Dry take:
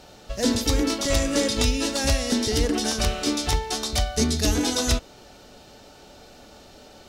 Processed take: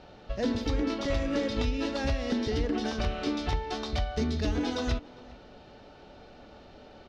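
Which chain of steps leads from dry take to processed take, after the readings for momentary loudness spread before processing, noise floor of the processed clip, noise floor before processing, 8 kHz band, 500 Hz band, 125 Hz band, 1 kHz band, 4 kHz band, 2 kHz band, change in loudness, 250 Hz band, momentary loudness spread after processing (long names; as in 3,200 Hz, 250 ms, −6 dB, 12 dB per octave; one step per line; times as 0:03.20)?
3 LU, −52 dBFS, −49 dBFS, −22.0 dB, −5.0 dB, −5.5 dB, −5.0 dB, −12.0 dB, −7.0 dB, −7.5 dB, −5.0 dB, 4 LU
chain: downward compressor 3 to 1, threshold −23 dBFS, peak gain reduction 5.5 dB
high-frequency loss of the air 250 metres
slap from a distant wall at 69 metres, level −21 dB
level −1.5 dB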